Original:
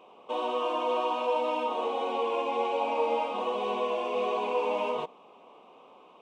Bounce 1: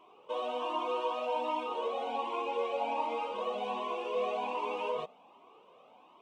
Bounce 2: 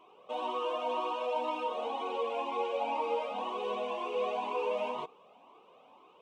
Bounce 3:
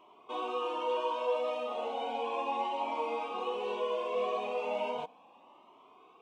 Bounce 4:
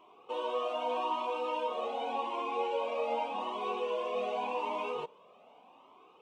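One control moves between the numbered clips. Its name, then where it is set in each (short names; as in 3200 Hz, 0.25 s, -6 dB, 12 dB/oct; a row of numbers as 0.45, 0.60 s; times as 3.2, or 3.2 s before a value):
cascading flanger, rate: 1.3, 2, 0.35, 0.85 Hz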